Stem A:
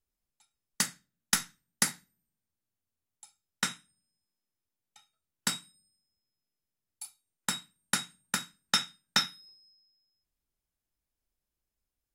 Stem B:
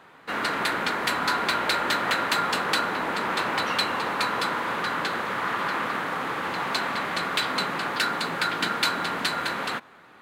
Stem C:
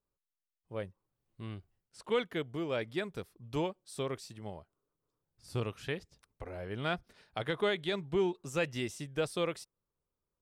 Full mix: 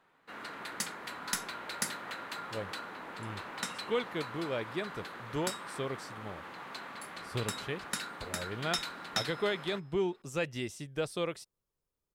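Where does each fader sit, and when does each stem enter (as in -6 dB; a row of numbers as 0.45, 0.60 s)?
-7.5, -17.0, -1.0 dB; 0.00, 0.00, 1.80 s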